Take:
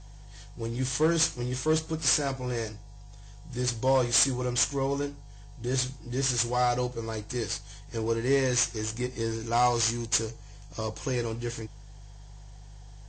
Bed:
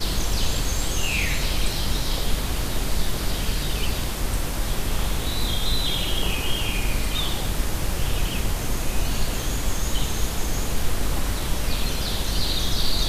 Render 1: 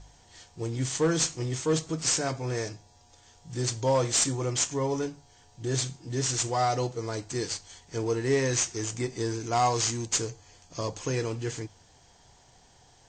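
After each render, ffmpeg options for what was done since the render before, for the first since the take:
-af "bandreject=f=50:t=h:w=4,bandreject=f=100:t=h:w=4,bandreject=f=150:t=h:w=4"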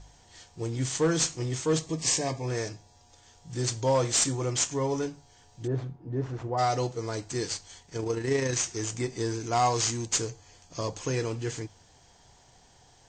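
-filter_complex "[0:a]asettb=1/sr,asplit=3[a][b][c];[a]atrim=end=1.864[d];[b]atrim=start=1.86:end=2.48,asetpts=PTS-STARTPTS,afade=t=in:d=0.004:c=qsin,afade=t=out:st=0.616:d=0.004:c=qsin,asuperstop=centerf=1400:order=8:qfactor=3.7[e];[c]atrim=start=2.476[f];[d][e]acrossfade=d=0.004:c1=hsin:c2=qsin[g];[g][f]acrossfade=d=0.004:c1=qsin:c2=hsin,asplit=3[h][i][j];[h]afade=t=out:st=5.66:d=0.02[k];[i]lowpass=1k,afade=t=in:st=5.66:d=0.02,afade=t=out:st=6.57:d=0.02[l];[j]afade=t=in:st=6.57:d=0.02[m];[k][l][m]amix=inputs=3:normalize=0,asettb=1/sr,asplit=3[n][o][p];[n]atrim=end=7.824[q];[o]atrim=start=7.82:end=8.65,asetpts=PTS-STARTPTS,afade=t=in:d=0.004:c=qsin,afade=t=out:st=0.826:d=0.004:c=qsin,tremolo=f=28:d=0.4[r];[p]atrim=start=8.646[s];[q][r]acrossfade=d=0.004:c1=hsin:c2=qsin[t];[t][s]acrossfade=d=0.004:c1=qsin:c2=hsin"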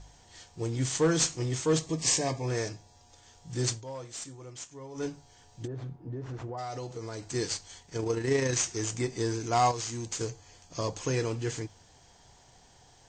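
-filter_complex "[0:a]asettb=1/sr,asplit=3[a][b][c];[a]atrim=end=5.654[d];[b]atrim=start=5.65:end=7.34,asetpts=PTS-STARTPTS,afade=t=in:d=0.004:c=qsin,afade=t=out:st=1.686:d=0.004:c=qsin,acompressor=threshold=-34dB:ratio=6:attack=3.2:release=140:knee=1:detection=peak[e];[c]atrim=start=7.336[f];[d][e]acrossfade=d=0.004:c1=hsin:c2=qsin[g];[g][f]acrossfade=d=0.004:c1=qsin:c2=hsin,asettb=1/sr,asplit=3[h][i][j];[h]atrim=end=9.714[k];[i]atrim=start=9.71:end=10.21,asetpts=PTS-STARTPTS,afade=t=in:d=0.004:c=qsin,afade=t=out:st=0.496:d=0.004:c=qsin,acompressor=threshold=-32dB:ratio=6:attack=3.2:release=140:knee=1:detection=peak[l];[j]atrim=start=10.206[m];[k][l]acrossfade=d=0.004:c1=hsin:c2=qsin[n];[n][m]acrossfade=d=0.004:c1=qsin:c2=hsin,asplit=3[o][p][q];[o]atrim=end=3.84,asetpts=PTS-STARTPTS,afade=t=out:st=3.71:d=0.13:silence=0.158489[r];[p]atrim=start=3.84:end=4.94,asetpts=PTS-STARTPTS,volume=-16dB[s];[q]atrim=start=4.94,asetpts=PTS-STARTPTS,afade=t=in:d=0.13:silence=0.158489[t];[r][s][t]concat=n=3:v=0:a=1"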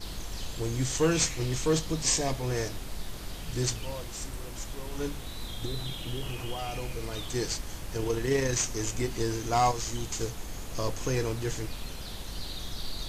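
-filter_complex "[1:a]volume=-14dB[a];[0:a][a]amix=inputs=2:normalize=0"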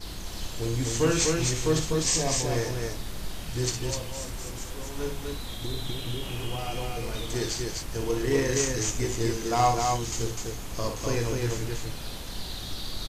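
-filter_complex "[0:a]asplit=2[a][b];[b]adelay=26,volume=-12dB[c];[a][c]amix=inputs=2:normalize=0,aecho=1:1:58.31|250.7:0.447|0.708"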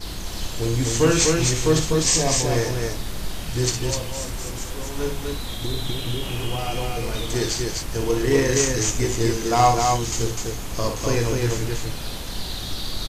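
-af "volume=6dB"

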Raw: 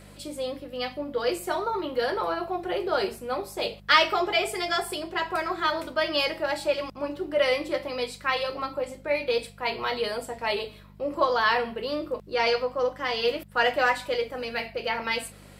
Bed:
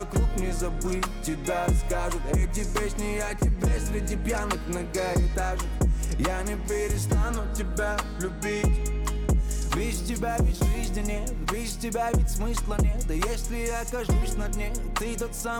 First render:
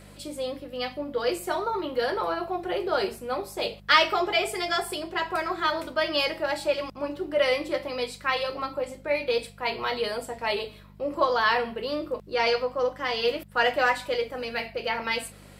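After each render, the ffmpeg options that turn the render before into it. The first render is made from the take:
-af anull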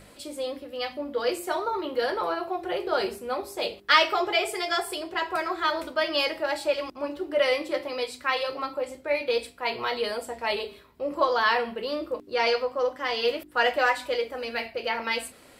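-af "bandreject=f=50:t=h:w=4,bandreject=f=100:t=h:w=4,bandreject=f=150:t=h:w=4,bandreject=f=200:t=h:w=4,bandreject=f=250:t=h:w=4,bandreject=f=300:t=h:w=4,bandreject=f=350:t=h:w=4,bandreject=f=400:t=h:w=4"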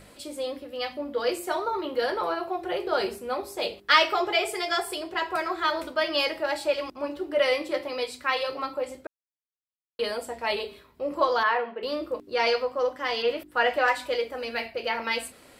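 -filter_complex "[0:a]asettb=1/sr,asplit=3[a][b][c];[a]atrim=end=11.434[d];[b]atrim=start=11.43:end=11.83,asetpts=PTS-STARTPTS,afade=t=in:d=0.004:c=qsin,afade=t=out:st=0.396:d=0.004:c=qsin,highpass=340,lowpass=2k[e];[c]atrim=start=11.826[f];[d][e]acrossfade=d=0.004:c1=hsin:c2=qsin[g];[g][f]acrossfade=d=0.004:c1=qsin:c2=hsin,asettb=1/sr,asplit=3[h][i][j];[h]atrim=end=13.224[k];[i]atrim=start=13.22:end=13.88,asetpts=PTS-STARTPTS,afade=t=in:d=0.004:c=qsin,afade=t=out:st=0.656:d=0.004:c=qsin,acrossover=split=3300[l][m];[m]acompressor=threshold=-46dB:ratio=4:attack=1:release=60[n];[l][n]amix=inputs=2:normalize=0[o];[j]atrim=start=13.876[p];[k][o]acrossfade=d=0.004:c1=hsin:c2=qsin[q];[q][p]acrossfade=d=0.004:c1=qsin:c2=hsin,asplit=3[r][s][t];[r]atrim=end=9.07,asetpts=PTS-STARTPTS,afade=t=out:st=9.066:d=0.004:c=hsin[u];[s]atrim=start=9.07:end=9.99,asetpts=PTS-STARTPTS,volume=0[v];[t]atrim=start=9.99,asetpts=PTS-STARTPTS,afade=t=in:d=0.004:c=hsin[w];[u][v][w]concat=n=3:v=0:a=1"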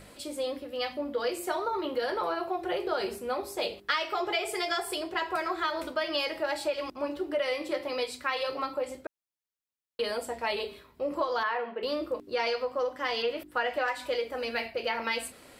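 -af "acompressor=threshold=-26dB:ratio=6"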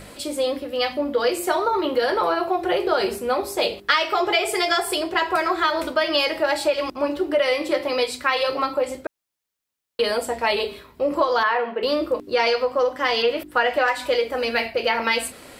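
-af "volume=9.5dB"

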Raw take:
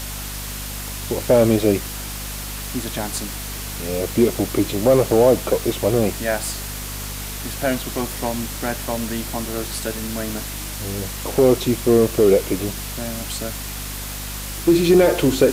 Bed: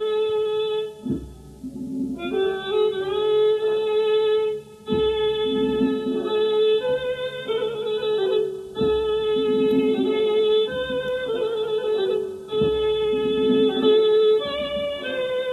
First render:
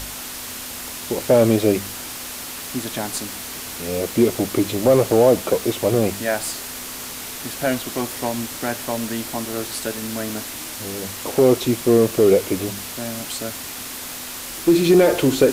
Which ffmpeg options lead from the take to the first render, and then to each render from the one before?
-af "bandreject=f=50:t=h:w=4,bandreject=f=100:t=h:w=4,bandreject=f=150:t=h:w=4,bandreject=f=200:t=h:w=4"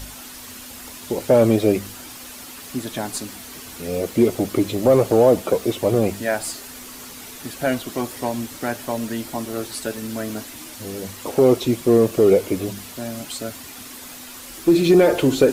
-af "afftdn=nr=8:nf=-33"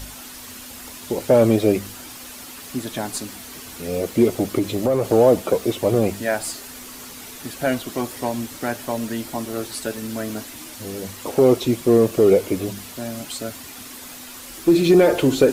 -filter_complex "[0:a]asettb=1/sr,asplit=3[a][b][c];[a]atrim=end=4.584[d];[b]atrim=start=4.58:end=5.06,asetpts=PTS-STARTPTS,afade=t=in:d=0.004:c=qsin,afade=t=out:st=0.476:d=0.004:c=qsin,acompressor=threshold=-15dB:ratio=5:attack=3.2:release=140:knee=1:detection=peak[e];[c]atrim=start=5.056[f];[d][e]acrossfade=d=0.004:c1=hsin:c2=qsin[g];[g][f]acrossfade=d=0.004:c1=qsin:c2=hsin"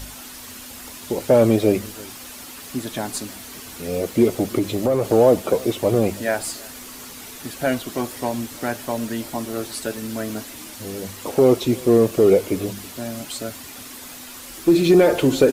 -filter_complex "[0:a]asplit=2[a][b];[b]adelay=326.5,volume=-23dB,highshelf=f=4k:g=-7.35[c];[a][c]amix=inputs=2:normalize=0"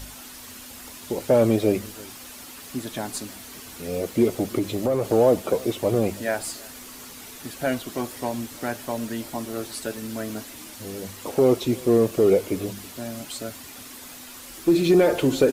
-af "volume=-3.5dB"

